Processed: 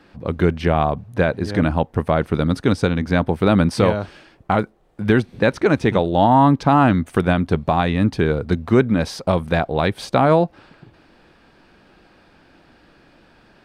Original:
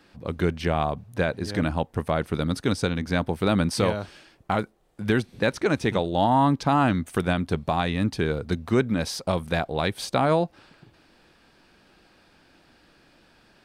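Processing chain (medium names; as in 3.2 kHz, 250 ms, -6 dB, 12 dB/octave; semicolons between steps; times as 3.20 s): treble shelf 3.7 kHz -11 dB; trim +7 dB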